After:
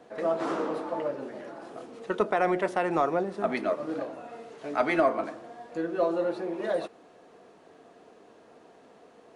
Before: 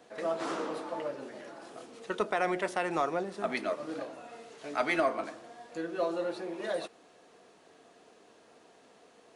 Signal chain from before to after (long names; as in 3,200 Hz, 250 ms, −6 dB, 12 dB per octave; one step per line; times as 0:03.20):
high-shelf EQ 2,100 Hz −11 dB
level +6 dB